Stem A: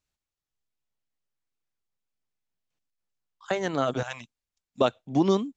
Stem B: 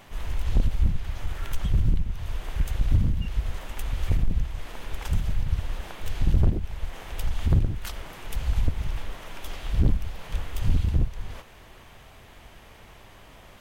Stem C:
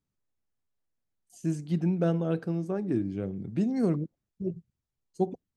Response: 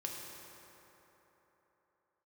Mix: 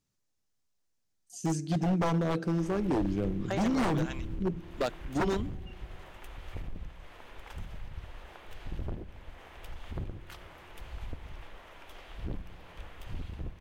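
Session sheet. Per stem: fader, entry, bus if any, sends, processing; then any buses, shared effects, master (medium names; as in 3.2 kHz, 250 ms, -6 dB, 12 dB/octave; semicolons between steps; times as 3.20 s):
-6.5 dB, 0.00 s, no send, none
-10.0 dB, 2.45 s, send -9.5 dB, tone controls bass -9 dB, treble -9 dB
+1.0 dB, 0.00 s, send -17 dB, peaking EQ 5.8 kHz +8.5 dB 1.2 oct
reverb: on, RT60 3.7 s, pre-delay 3 ms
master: wavefolder -22 dBFS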